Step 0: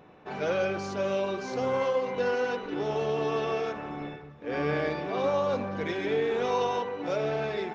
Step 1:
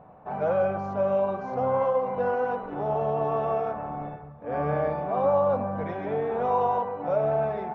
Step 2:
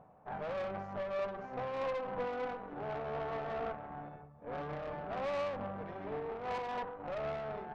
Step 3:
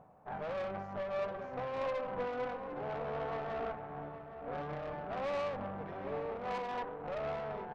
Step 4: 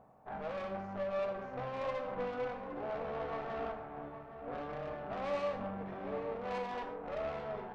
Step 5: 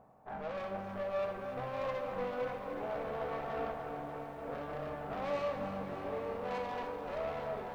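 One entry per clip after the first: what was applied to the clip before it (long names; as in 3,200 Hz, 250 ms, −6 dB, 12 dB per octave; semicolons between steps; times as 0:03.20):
drawn EQ curve 110 Hz 0 dB, 220 Hz −3 dB, 360 Hz −12 dB, 670 Hz +4 dB, 1,200 Hz −3 dB, 1,800 Hz −12 dB, 4,500 Hz −26 dB; level +5 dB
tube saturation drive 28 dB, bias 0.8; reversed playback; upward compression, threshold −44 dBFS; reversed playback; amplitude modulation by smooth noise, depth 60%; level −3.5 dB
slap from a distant wall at 140 metres, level −9 dB
reverb whose tail is shaped and stops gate 180 ms falling, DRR 4.5 dB; level −2 dB
feedback echo at a low word length 295 ms, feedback 80%, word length 11 bits, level −9.5 dB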